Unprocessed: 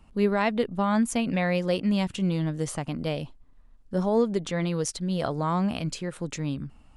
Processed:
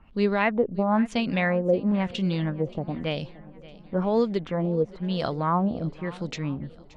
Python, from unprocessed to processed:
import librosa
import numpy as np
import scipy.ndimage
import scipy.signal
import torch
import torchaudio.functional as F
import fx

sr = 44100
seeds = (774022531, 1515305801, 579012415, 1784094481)

y = fx.filter_lfo_lowpass(x, sr, shape='sine', hz=1.0, low_hz=480.0, high_hz=5000.0, q=1.9)
y = fx.echo_swing(y, sr, ms=960, ratio=1.5, feedback_pct=37, wet_db=-20.0)